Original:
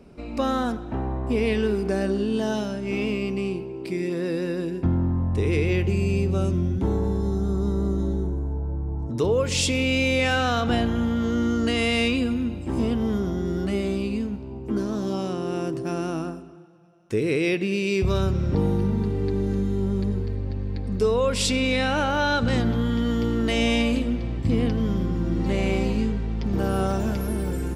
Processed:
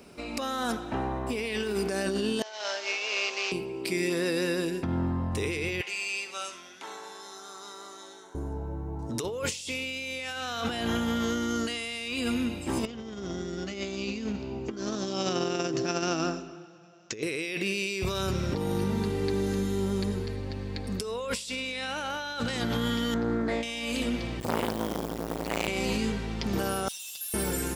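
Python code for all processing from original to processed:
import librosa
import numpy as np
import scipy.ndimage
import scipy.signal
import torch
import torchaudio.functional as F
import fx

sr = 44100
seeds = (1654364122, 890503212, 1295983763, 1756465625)

y = fx.chain(x, sr, fx.cvsd(bps=32000),
    fx.highpass(hz=540.0, slope=24),
    fx.over_compress(threshold_db=-36.0, ratio=-0.5), at=(2.42, 3.52))
y = fx.chain(y, sr, fx.highpass(hz=1200.0, slope=12),
    fx.air_absorb(metres=55.0),
    fx.room_flutter(wall_m=11.0, rt60_s=0.32), at=(5.81, 8.35))
y = fx.chain(y, sr, fx.peak_eq(hz=970.0, db=-4.5, octaves=0.43),
    fx.over_compress(threshold_db=-29.0, ratio=-0.5),
    fx.resample_bad(factor=3, down='none', up='filtered'), at=(12.85, 17.23))
y = fx.chain(y, sr, fx.moving_average(points=15),
    fx.doppler_dist(depth_ms=0.21), at=(23.14, 23.63))
y = fx.chain(y, sr, fx.quant_float(bits=4),
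    fx.transformer_sat(knee_hz=690.0), at=(24.4, 25.68))
y = fx.chain(y, sr, fx.cheby_ripple_highpass(hz=2600.0, ripple_db=6),
    fx.comb(ms=6.5, depth=0.84),
    fx.tube_stage(drive_db=41.0, bias=0.7), at=(26.88, 27.34))
y = fx.tilt_eq(y, sr, slope=3.0)
y = fx.over_compress(y, sr, threshold_db=-30.0, ratio=-1.0)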